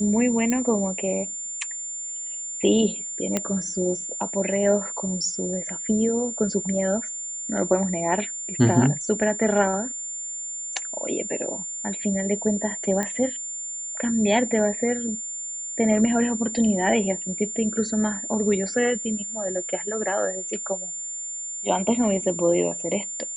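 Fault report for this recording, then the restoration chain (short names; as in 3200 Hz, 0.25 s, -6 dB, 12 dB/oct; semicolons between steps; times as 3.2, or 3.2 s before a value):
tone 7200 Hz -30 dBFS
0.5 pop -11 dBFS
3.37 pop -8 dBFS
13.03 pop -13 dBFS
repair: de-click; notch 7200 Hz, Q 30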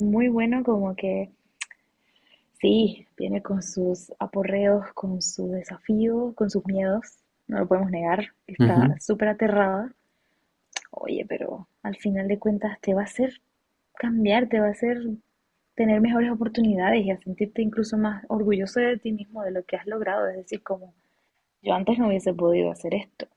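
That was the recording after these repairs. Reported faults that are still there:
none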